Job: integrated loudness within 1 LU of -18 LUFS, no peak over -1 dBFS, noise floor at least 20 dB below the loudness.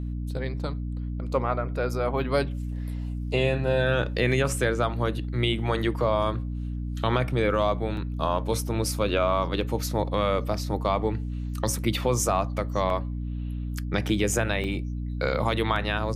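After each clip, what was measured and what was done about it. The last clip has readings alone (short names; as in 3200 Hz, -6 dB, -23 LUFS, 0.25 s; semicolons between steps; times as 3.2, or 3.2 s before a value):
dropouts 5; longest dropout 2.0 ms; hum 60 Hz; harmonics up to 300 Hz; hum level -28 dBFS; loudness -27.0 LUFS; peak -9.5 dBFS; loudness target -18.0 LUFS
-> interpolate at 7.97/9.61/12.9/14.64/15.76, 2 ms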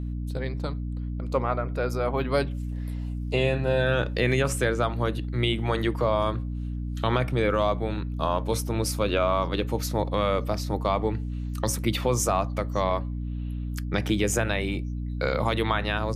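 dropouts 0; hum 60 Hz; harmonics up to 300 Hz; hum level -28 dBFS
-> de-hum 60 Hz, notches 5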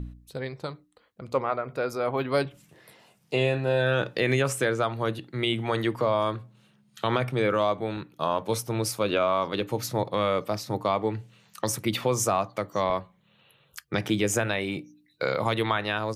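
hum none; loudness -27.5 LUFS; peak -9.0 dBFS; loudness target -18.0 LUFS
-> gain +9.5 dB; limiter -1 dBFS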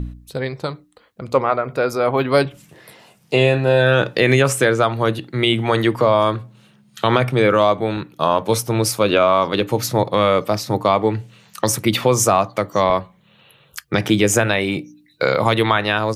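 loudness -18.0 LUFS; peak -1.0 dBFS; noise floor -55 dBFS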